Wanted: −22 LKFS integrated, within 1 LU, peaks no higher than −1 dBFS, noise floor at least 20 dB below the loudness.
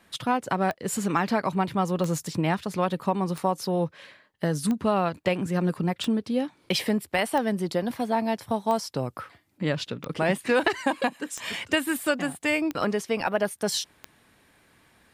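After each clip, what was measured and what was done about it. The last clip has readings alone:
number of clicks 11; integrated loudness −27.0 LKFS; sample peak −9.5 dBFS; target loudness −22.0 LKFS
→ click removal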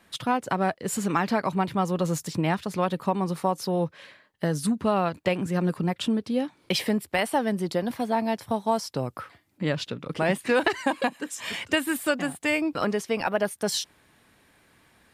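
number of clicks 0; integrated loudness −27.0 LKFS; sample peak −9.5 dBFS; target loudness −22.0 LKFS
→ level +5 dB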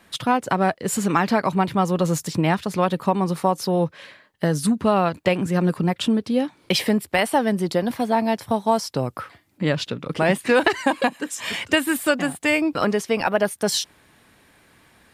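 integrated loudness −22.0 LKFS; sample peak −4.5 dBFS; background noise floor −57 dBFS

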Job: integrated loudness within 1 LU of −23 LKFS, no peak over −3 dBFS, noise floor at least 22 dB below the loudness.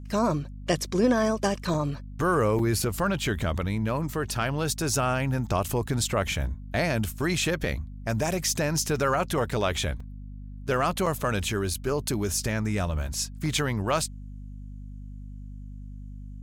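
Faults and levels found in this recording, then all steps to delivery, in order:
number of dropouts 5; longest dropout 4.0 ms; mains hum 50 Hz; hum harmonics up to 250 Hz; level of the hum −37 dBFS; integrated loudness −27.0 LKFS; sample peak −11.0 dBFS; target loudness −23.0 LKFS
→ repair the gap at 0:01.74/0:02.59/0:10.00/0:11.06/0:11.74, 4 ms
hum removal 50 Hz, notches 5
level +4 dB

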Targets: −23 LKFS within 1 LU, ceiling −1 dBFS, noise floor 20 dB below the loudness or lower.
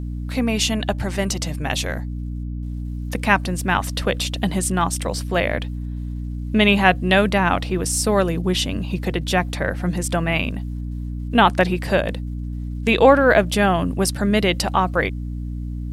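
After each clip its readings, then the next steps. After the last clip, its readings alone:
mains hum 60 Hz; hum harmonics up to 300 Hz; level of the hum −25 dBFS; integrated loudness −20.5 LKFS; sample peak −1.0 dBFS; target loudness −23.0 LKFS
→ hum removal 60 Hz, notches 5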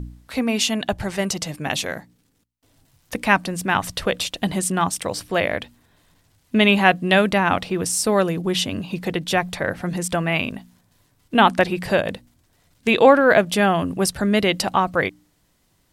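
mains hum none found; integrated loudness −20.5 LKFS; sample peak −1.0 dBFS; target loudness −23.0 LKFS
→ level −2.5 dB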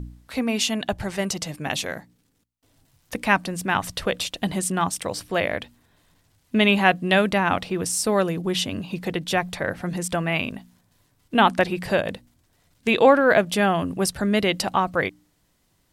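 integrated loudness −23.0 LKFS; sample peak −3.5 dBFS; background noise floor −67 dBFS

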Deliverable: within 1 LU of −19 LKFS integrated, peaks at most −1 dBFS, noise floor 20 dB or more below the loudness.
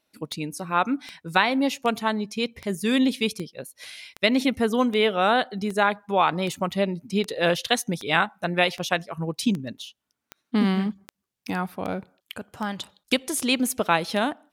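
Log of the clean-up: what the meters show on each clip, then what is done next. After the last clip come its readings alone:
number of clicks 19; integrated loudness −24.5 LKFS; sample peak −4.5 dBFS; target loudness −19.0 LKFS
→ click removal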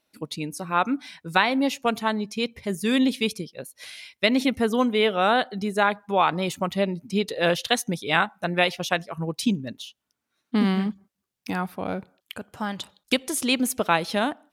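number of clicks 0; integrated loudness −24.5 LKFS; sample peak −4.5 dBFS; target loudness −19.0 LKFS
→ level +5.5 dB
brickwall limiter −1 dBFS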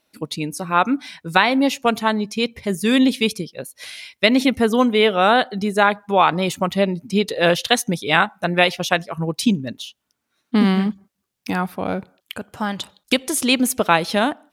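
integrated loudness −19.0 LKFS; sample peak −1.0 dBFS; background noise floor −77 dBFS

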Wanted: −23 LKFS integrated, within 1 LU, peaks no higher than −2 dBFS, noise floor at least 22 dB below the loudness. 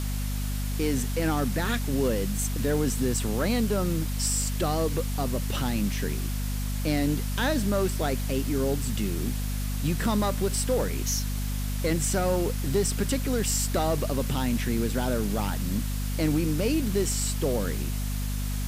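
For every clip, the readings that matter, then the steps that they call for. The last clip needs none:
mains hum 50 Hz; hum harmonics up to 250 Hz; level of the hum −27 dBFS; background noise floor −29 dBFS; target noise floor −50 dBFS; integrated loudness −27.5 LKFS; sample peak −13.5 dBFS; target loudness −23.0 LKFS
→ hum removal 50 Hz, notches 5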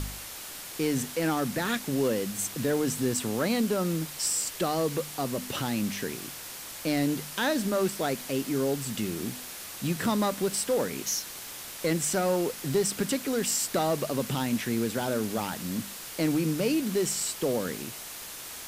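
mains hum none found; background noise floor −41 dBFS; target noise floor −51 dBFS
→ broadband denoise 10 dB, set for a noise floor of −41 dBFS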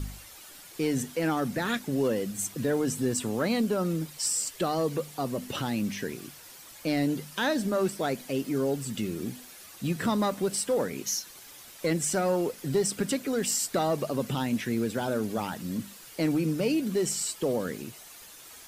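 background noise floor −49 dBFS; target noise floor −51 dBFS
→ broadband denoise 6 dB, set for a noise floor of −49 dBFS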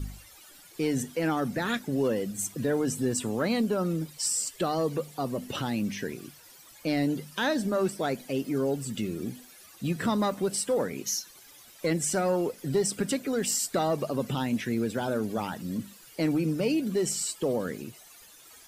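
background noise floor −53 dBFS; integrated loudness −29.0 LKFS; sample peak −16.0 dBFS; target loudness −23.0 LKFS
→ level +6 dB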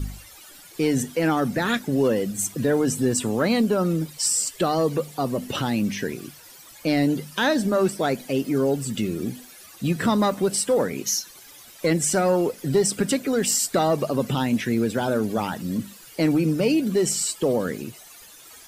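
integrated loudness −23.0 LKFS; sample peak −10.0 dBFS; background noise floor −47 dBFS

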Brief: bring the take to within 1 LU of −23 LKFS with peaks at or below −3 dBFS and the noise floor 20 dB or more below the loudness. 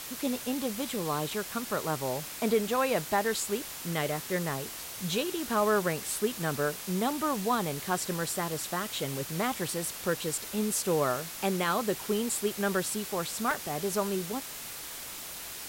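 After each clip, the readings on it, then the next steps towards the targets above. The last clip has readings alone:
number of dropouts 1; longest dropout 3.0 ms; background noise floor −41 dBFS; target noise floor −51 dBFS; integrated loudness −31.0 LKFS; sample peak −15.0 dBFS; target loudness −23.0 LKFS
→ repair the gap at 0:13.51, 3 ms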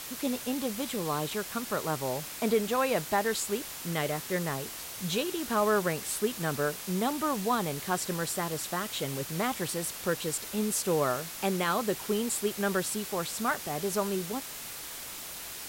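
number of dropouts 0; background noise floor −41 dBFS; target noise floor −51 dBFS
→ broadband denoise 10 dB, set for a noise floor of −41 dBFS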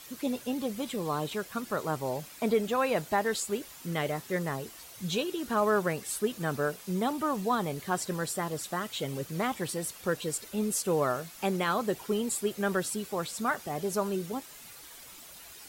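background noise floor −49 dBFS; target noise floor −52 dBFS
→ broadband denoise 6 dB, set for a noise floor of −49 dBFS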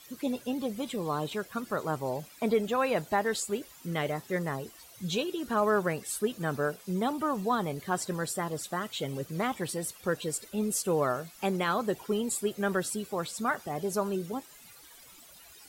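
background noise floor −53 dBFS; integrated loudness −31.5 LKFS; sample peak −16.0 dBFS; target loudness −23.0 LKFS
→ level +8.5 dB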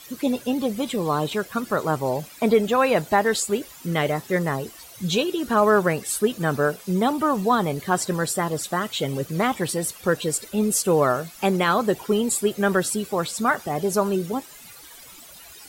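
integrated loudness −23.0 LKFS; sample peak −7.5 dBFS; background noise floor −45 dBFS

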